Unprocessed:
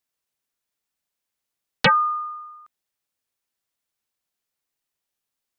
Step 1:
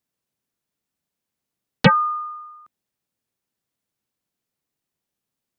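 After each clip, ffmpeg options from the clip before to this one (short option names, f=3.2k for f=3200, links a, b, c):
-af "equalizer=f=170:t=o:w=2.9:g=12.5,volume=-1.5dB"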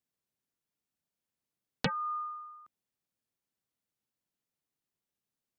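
-af "acompressor=threshold=-21dB:ratio=8,volume=-7.5dB"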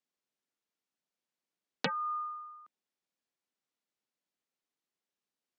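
-af "highpass=240,lowpass=6.8k"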